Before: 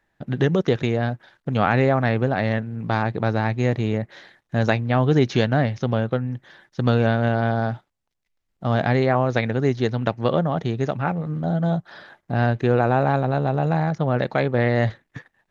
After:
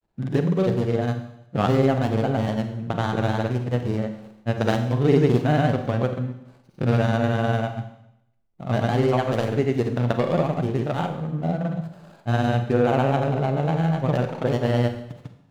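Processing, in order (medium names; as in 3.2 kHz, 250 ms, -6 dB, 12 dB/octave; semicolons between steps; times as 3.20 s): median filter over 25 samples; granulator, pitch spread up and down by 0 st; Schroeder reverb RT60 0.79 s, combs from 33 ms, DRR 7 dB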